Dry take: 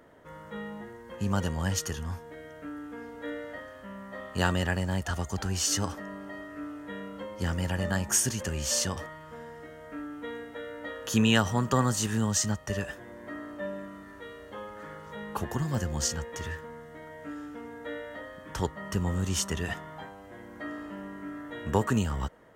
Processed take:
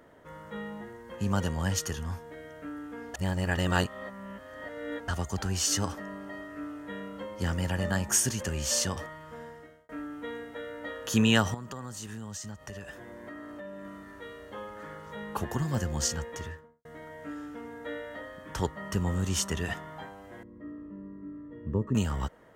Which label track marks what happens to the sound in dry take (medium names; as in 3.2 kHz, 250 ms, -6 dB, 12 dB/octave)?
3.140000	5.080000	reverse
9.450000	9.890000	fade out
11.540000	13.850000	compression 4:1, threshold -39 dBFS
16.270000	16.850000	studio fade out
20.430000	21.950000	boxcar filter over 58 samples